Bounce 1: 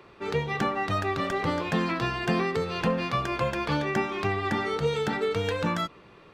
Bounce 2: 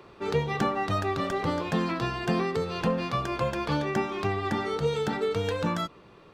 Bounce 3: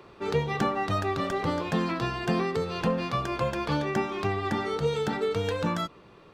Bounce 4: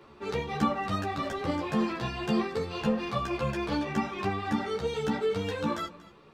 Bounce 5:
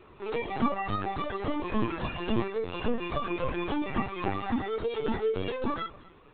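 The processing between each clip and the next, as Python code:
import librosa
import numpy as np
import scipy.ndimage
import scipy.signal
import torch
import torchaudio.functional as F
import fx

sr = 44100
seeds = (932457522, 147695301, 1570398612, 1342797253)

y1 = fx.peak_eq(x, sr, hz=2100.0, db=-4.5, octaves=1.1)
y1 = fx.rider(y1, sr, range_db=10, speed_s=2.0)
y2 = y1
y3 = fx.doubler(y2, sr, ms=14.0, db=-7.5)
y3 = y3 + 10.0 ** (-19.0 / 20.0) * np.pad(y3, (int(235 * sr / 1000.0), 0))[:len(y3)]
y3 = fx.ensemble(y3, sr)
y4 = fx.lpc_vocoder(y3, sr, seeds[0], excitation='pitch_kept', order=16)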